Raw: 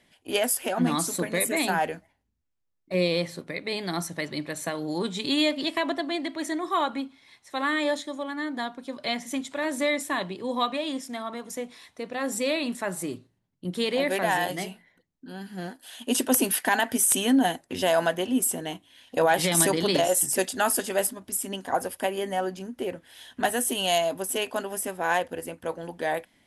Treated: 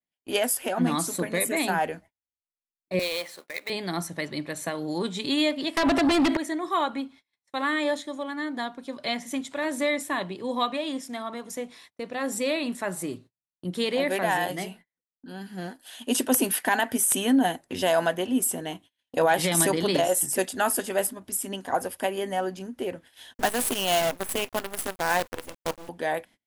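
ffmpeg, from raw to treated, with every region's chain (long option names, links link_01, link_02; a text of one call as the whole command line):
ffmpeg -i in.wav -filter_complex "[0:a]asettb=1/sr,asplit=3[link_01][link_02][link_03];[link_01]atrim=end=2.994[link_04];[link_02]atrim=start=2.99:end=3.7,asetpts=PTS-STARTPTS,afade=type=in:duration=0.004:curve=qsin,afade=type=out:start_time=0.706:duration=0.004:curve=qsin,highpass=680,acrusher=bits=2:mode=log:mix=0:aa=0.000001[link_05];[link_03]atrim=start=3.696[link_06];[link_04][link_05]acrossfade=duration=0.004:curve1=hsin:curve2=qsin[link_07];[link_07][link_06]acrossfade=duration=0.004:curve1=qsin:curve2=hsin,asettb=1/sr,asplit=3[link_08][link_09][link_10];[link_08]atrim=end=5.774[link_11];[link_09]atrim=start=5.77:end=6.37,asetpts=PTS-STARTPTS,afade=type=in:duration=0.004:curve=qsin,afade=type=out:start_time=0.596:duration=0.004:curve=qsin,acompressor=threshold=-32dB:ratio=8:attack=3.2:release=140:knee=1:detection=peak,aeval=exprs='0.133*sin(PI/2*6.31*val(0)/0.133)':channel_layout=same[link_12];[link_10]atrim=start=6.366[link_13];[link_11][link_12]acrossfade=duration=0.004:curve1=hsin:curve2=qsin[link_14];[link_14][link_13]acrossfade=duration=0.004:curve1=qsin:curve2=hsin,asettb=1/sr,asplit=3[link_15][link_16][link_17];[link_15]atrim=end=23.344[link_18];[link_16]atrim=start=23.34:end=25.89,asetpts=PTS-STARTPTS,afade=type=in:duration=0.004:curve=qsin,afade=type=out:start_time=2.546:duration=0.004:curve=qsin,agate=range=-33dB:threshold=-35dB:ratio=3:release=100:detection=peak,acrusher=bits=5:dc=4:mix=0:aa=0.000001[link_19];[link_17]atrim=start=25.886[link_20];[link_18][link_19]acrossfade=duration=0.004:curve1=hsin:curve2=qsin[link_21];[link_21][link_20]acrossfade=duration=0.004:curve1=qsin:curve2=hsin,adynamicequalizer=threshold=0.00891:dfrequency=5200:dqfactor=0.81:tfrequency=5200:tqfactor=0.81:attack=5:release=100:ratio=0.375:range=2:mode=cutabove:tftype=bell,agate=range=-32dB:threshold=-48dB:ratio=16:detection=peak" out.wav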